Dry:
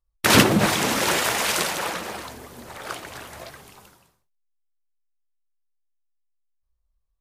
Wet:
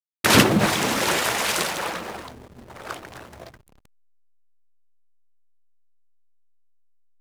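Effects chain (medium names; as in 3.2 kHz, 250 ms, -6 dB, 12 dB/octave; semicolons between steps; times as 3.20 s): hysteresis with a dead band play -32.5 dBFS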